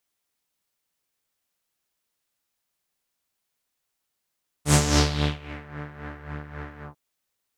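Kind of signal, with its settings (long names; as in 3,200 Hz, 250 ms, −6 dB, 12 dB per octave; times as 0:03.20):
subtractive patch with tremolo D3, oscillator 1 saw, interval −12 semitones, detune 20 cents, oscillator 2 level −0.5 dB, noise −6 dB, filter lowpass, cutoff 820 Hz, Q 2.7, filter envelope 3.5 octaves, filter decay 1.05 s, filter sustain 30%, attack 108 ms, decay 0.64 s, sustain −21 dB, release 0.13 s, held 2.17 s, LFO 3.7 Hz, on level 10 dB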